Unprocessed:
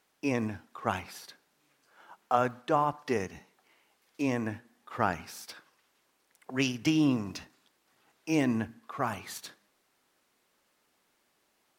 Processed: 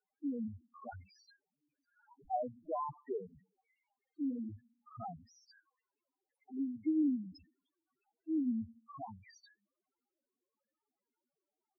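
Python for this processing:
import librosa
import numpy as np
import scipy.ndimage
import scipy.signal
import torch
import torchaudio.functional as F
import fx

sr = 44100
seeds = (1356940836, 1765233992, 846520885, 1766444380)

y = fx.dmg_wind(x, sr, seeds[0], corner_hz=480.0, level_db=-42.0, at=(2.18, 2.79), fade=0.02)
y = fx.spec_topn(y, sr, count=2)
y = y * 10.0 ** (-4.5 / 20.0)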